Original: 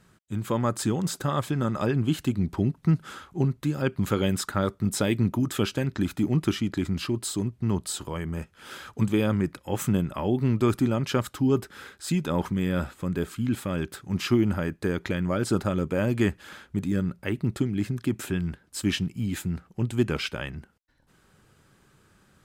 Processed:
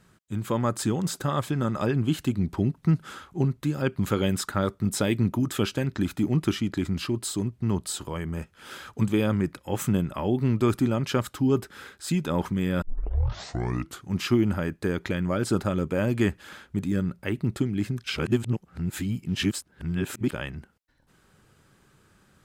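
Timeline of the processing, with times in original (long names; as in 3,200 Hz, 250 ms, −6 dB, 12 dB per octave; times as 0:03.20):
0:12.82: tape start 1.25 s
0:18.04–0:20.31: reverse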